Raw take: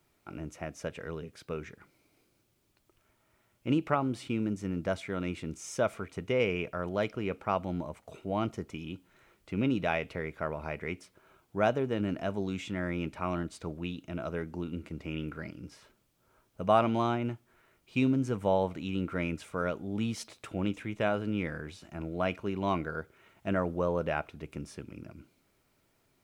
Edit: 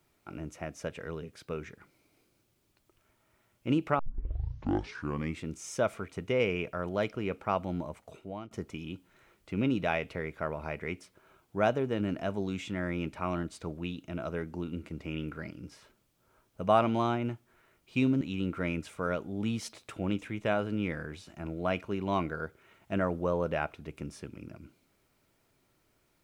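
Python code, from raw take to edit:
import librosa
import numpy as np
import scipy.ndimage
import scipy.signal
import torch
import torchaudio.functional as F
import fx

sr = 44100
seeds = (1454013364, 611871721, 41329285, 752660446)

y = fx.edit(x, sr, fx.tape_start(start_s=3.99, length_s=1.44),
    fx.fade_out_to(start_s=8.0, length_s=0.51, floor_db=-22.5),
    fx.cut(start_s=18.21, length_s=0.55), tone=tone)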